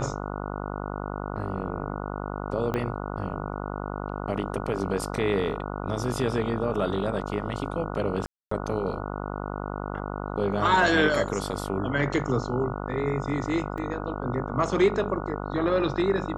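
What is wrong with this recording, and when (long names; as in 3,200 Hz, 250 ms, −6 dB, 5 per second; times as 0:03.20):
mains buzz 50 Hz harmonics 29 −33 dBFS
0:02.74: click −16 dBFS
0:08.26–0:08.51: drop-out 254 ms
0:13.78: drop-out 3 ms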